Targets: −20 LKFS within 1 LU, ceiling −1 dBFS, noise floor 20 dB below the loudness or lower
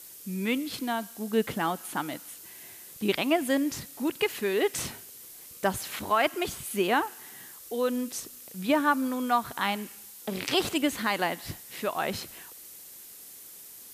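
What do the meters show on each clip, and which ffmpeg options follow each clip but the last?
background noise floor −47 dBFS; target noise floor −49 dBFS; integrated loudness −29.0 LKFS; sample peak −13.0 dBFS; target loudness −20.0 LKFS
→ -af "afftdn=noise_reduction=6:noise_floor=-47"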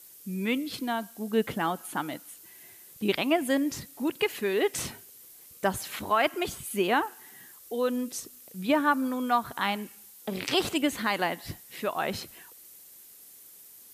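background noise floor −52 dBFS; integrated loudness −29.0 LKFS; sample peak −13.0 dBFS; target loudness −20.0 LKFS
→ -af "volume=9dB"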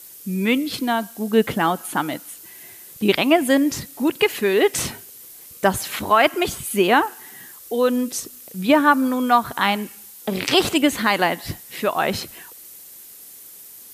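integrated loudness −20.0 LKFS; sample peak −4.0 dBFS; background noise floor −43 dBFS

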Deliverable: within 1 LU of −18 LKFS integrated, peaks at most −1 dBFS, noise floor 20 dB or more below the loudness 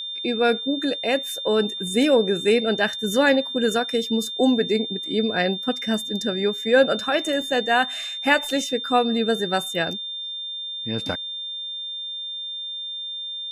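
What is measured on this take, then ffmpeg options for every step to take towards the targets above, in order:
interfering tone 3,600 Hz; level of the tone −29 dBFS; integrated loudness −22.5 LKFS; sample peak −4.5 dBFS; target loudness −18.0 LKFS
→ -af "bandreject=frequency=3600:width=30"
-af "volume=4.5dB,alimiter=limit=-1dB:level=0:latency=1"

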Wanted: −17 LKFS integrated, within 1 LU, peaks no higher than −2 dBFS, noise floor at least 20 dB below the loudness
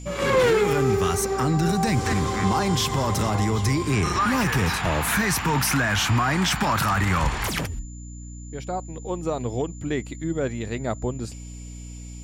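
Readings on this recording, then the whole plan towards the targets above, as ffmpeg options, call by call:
mains hum 60 Hz; hum harmonics up to 300 Hz; level of the hum −36 dBFS; interfering tone 7,100 Hz; level of the tone −46 dBFS; integrated loudness −23.0 LKFS; sample peak −11.5 dBFS; target loudness −17.0 LKFS
→ -af "bandreject=frequency=60:width_type=h:width=6,bandreject=frequency=120:width_type=h:width=6,bandreject=frequency=180:width_type=h:width=6,bandreject=frequency=240:width_type=h:width=6,bandreject=frequency=300:width_type=h:width=6"
-af "bandreject=frequency=7100:width=30"
-af "volume=6dB"

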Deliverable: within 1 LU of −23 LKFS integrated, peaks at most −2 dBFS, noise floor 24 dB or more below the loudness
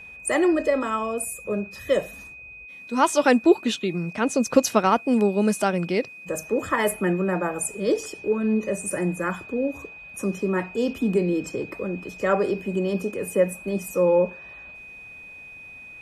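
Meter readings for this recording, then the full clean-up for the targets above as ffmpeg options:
interfering tone 2,500 Hz; level of the tone −40 dBFS; integrated loudness −24.0 LKFS; sample peak −5.0 dBFS; target loudness −23.0 LKFS
→ -af "bandreject=frequency=2500:width=30"
-af "volume=1dB"

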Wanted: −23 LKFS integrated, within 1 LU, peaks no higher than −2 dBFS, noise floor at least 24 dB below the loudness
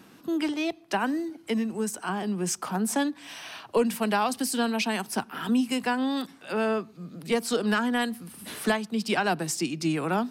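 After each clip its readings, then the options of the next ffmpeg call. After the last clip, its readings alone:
integrated loudness −28.0 LKFS; sample peak −14.0 dBFS; target loudness −23.0 LKFS
→ -af "volume=5dB"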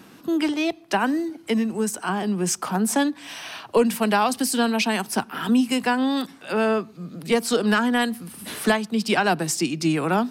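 integrated loudness −23.0 LKFS; sample peak −9.0 dBFS; background noise floor −48 dBFS

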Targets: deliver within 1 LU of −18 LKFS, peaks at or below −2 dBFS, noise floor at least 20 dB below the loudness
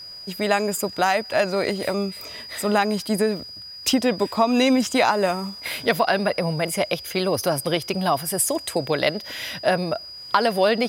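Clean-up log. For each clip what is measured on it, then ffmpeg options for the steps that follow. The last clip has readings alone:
interfering tone 4,900 Hz; level of the tone −36 dBFS; integrated loudness −22.5 LKFS; sample peak −3.5 dBFS; target loudness −18.0 LKFS
→ -af "bandreject=frequency=4900:width=30"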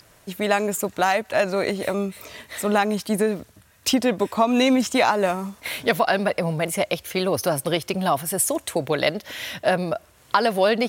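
interfering tone none found; integrated loudness −22.5 LKFS; sample peak −3.5 dBFS; target loudness −18.0 LKFS
→ -af "volume=4.5dB,alimiter=limit=-2dB:level=0:latency=1"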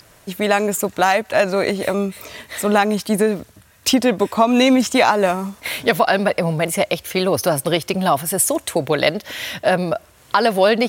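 integrated loudness −18.5 LKFS; sample peak −2.0 dBFS; background noise floor −50 dBFS

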